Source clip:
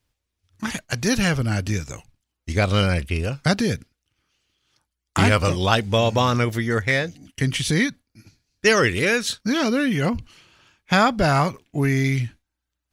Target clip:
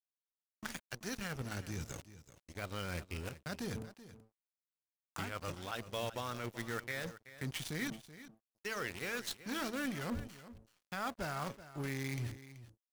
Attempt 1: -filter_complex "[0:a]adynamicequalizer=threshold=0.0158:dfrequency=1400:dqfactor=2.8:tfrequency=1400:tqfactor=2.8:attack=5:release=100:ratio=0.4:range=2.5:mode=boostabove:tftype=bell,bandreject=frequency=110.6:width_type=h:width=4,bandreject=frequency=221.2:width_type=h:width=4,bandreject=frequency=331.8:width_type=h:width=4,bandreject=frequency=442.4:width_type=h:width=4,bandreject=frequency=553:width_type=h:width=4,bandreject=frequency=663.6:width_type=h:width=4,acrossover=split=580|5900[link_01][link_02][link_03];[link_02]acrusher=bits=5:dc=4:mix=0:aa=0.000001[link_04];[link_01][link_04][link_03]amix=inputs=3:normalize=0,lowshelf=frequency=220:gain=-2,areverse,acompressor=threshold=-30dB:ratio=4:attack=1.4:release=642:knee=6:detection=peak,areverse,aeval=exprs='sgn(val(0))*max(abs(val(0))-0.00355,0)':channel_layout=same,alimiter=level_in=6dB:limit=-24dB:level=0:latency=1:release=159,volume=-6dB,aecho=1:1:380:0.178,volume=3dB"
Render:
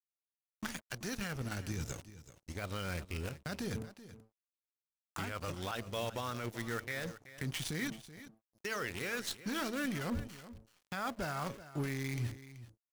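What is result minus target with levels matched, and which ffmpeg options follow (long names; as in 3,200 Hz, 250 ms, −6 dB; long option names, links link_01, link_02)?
downward compressor: peak gain reduction −5 dB
-filter_complex "[0:a]adynamicequalizer=threshold=0.0158:dfrequency=1400:dqfactor=2.8:tfrequency=1400:tqfactor=2.8:attack=5:release=100:ratio=0.4:range=2.5:mode=boostabove:tftype=bell,bandreject=frequency=110.6:width_type=h:width=4,bandreject=frequency=221.2:width_type=h:width=4,bandreject=frequency=331.8:width_type=h:width=4,bandreject=frequency=442.4:width_type=h:width=4,bandreject=frequency=553:width_type=h:width=4,bandreject=frequency=663.6:width_type=h:width=4,acrossover=split=580|5900[link_01][link_02][link_03];[link_02]acrusher=bits=5:dc=4:mix=0:aa=0.000001[link_04];[link_01][link_04][link_03]amix=inputs=3:normalize=0,lowshelf=frequency=220:gain=-2,areverse,acompressor=threshold=-37dB:ratio=4:attack=1.4:release=642:knee=6:detection=peak,areverse,aeval=exprs='sgn(val(0))*max(abs(val(0))-0.00355,0)':channel_layout=same,alimiter=level_in=6dB:limit=-24dB:level=0:latency=1:release=159,volume=-6dB,aecho=1:1:380:0.178,volume=3dB"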